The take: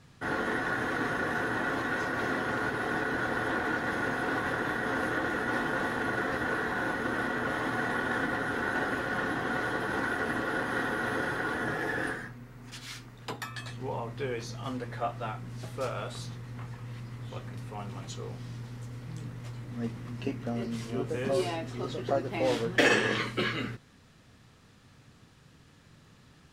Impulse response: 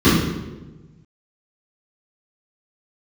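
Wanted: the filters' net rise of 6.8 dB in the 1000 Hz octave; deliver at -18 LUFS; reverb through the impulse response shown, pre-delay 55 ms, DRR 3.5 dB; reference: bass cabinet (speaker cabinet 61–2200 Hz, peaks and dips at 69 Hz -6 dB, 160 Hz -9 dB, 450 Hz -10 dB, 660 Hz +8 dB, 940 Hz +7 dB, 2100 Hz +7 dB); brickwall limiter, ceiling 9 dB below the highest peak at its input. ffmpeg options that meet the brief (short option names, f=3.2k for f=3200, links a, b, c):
-filter_complex "[0:a]equalizer=f=1k:t=o:g=3,alimiter=limit=-22dB:level=0:latency=1,asplit=2[a][b];[1:a]atrim=start_sample=2205,adelay=55[c];[b][c]afir=irnorm=-1:irlink=0,volume=-28dB[d];[a][d]amix=inputs=2:normalize=0,highpass=f=61:w=0.5412,highpass=f=61:w=1.3066,equalizer=f=69:t=q:w=4:g=-6,equalizer=f=160:t=q:w=4:g=-9,equalizer=f=450:t=q:w=4:g=-10,equalizer=f=660:t=q:w=4:g=8,equalizer=f=940:t=q:w=4:g=7,equalizer=f=2.1k:t=q:w=4:g=7,lowpass=f=2.2k:w=0.5412,lowpass=f=2.2k:w=1.3066,volume=9.5dB"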